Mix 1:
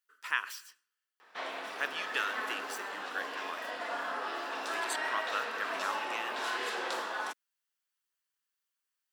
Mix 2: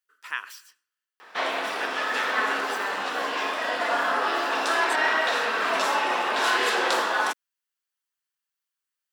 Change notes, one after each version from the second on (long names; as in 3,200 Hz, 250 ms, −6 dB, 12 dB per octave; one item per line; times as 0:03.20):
background +12.0 dB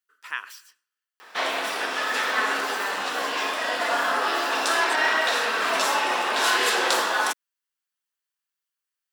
background: add high-shelf EQ 4,700 Hz +9.5 dB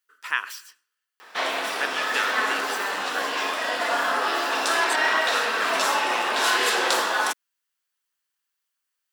speech +6.0 dB